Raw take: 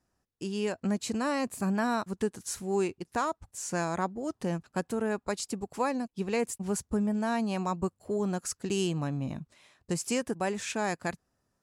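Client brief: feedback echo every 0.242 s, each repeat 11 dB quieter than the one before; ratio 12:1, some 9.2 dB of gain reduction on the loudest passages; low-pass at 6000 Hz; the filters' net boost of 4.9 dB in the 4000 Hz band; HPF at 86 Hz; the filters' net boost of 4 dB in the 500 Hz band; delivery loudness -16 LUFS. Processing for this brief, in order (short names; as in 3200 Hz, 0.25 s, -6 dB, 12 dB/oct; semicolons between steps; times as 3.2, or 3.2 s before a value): HPF 86 Hz; LPF 6000 Hz; bell 500 Hz +5 dB; bell 4000 Hz +7.5 dB; compressor 12:1, threshold -30 dBFS; feedback echo 0.242 s, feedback 28%, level -11 dB; gain +19.5 dB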